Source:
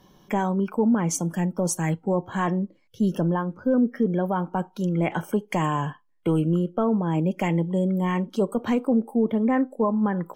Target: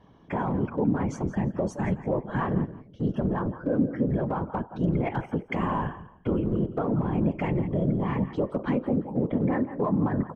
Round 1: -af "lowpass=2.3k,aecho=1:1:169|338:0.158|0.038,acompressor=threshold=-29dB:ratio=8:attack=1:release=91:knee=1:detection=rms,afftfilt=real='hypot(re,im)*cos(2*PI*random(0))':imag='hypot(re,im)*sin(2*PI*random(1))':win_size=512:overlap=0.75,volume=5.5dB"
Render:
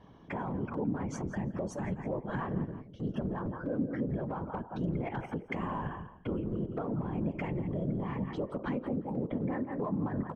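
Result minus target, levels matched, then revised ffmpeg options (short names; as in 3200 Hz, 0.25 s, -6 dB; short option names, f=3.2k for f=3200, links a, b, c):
compressor: peak gain reduction +8.5 dB
-af "lowpass=2.3k,aecho=1:1:169|338:0.158|0.038,acompressor=threshold=-19.5dB:ratio=8:attack=1:release=91:knee=1:detection=rms,afftfilt=real='hypot(re,im)*cos(2*PI*random(0))':imag='hypot(re,im)*sin(2*PI*random(1))':win_size=512:overlap=0.75,volume=5.5dB"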